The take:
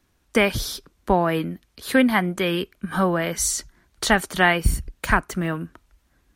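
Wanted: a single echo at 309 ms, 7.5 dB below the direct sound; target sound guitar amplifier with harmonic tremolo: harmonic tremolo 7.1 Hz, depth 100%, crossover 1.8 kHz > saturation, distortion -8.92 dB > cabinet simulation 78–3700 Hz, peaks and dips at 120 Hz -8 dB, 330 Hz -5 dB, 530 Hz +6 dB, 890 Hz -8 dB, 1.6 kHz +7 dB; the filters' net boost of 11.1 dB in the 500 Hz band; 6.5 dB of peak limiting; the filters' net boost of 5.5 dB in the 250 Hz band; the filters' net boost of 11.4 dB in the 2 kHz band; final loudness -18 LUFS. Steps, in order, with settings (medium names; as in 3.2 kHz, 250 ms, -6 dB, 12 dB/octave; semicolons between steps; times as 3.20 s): peaking EQ 250 Hz +6.5 dB; peaking EQ 500 Hz +8 dB; peaking EQ 2 kHz +8.5 dB; peak limiter -3.5 dBFS; delay 309 ms -7.5 dB; harmonic tremolo 7.1 Hz, depth 100%, crossover 1.8 kHz; saturation -17.5 dBFS; cabinet simulation 78–3700 Hz, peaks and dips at 120 Hz -8 dB, 330 Hz -5 dB, 530 Hz +6 dB, 890 Hz -8 dB, 1.6 kHz +7 dB; trim +7 dB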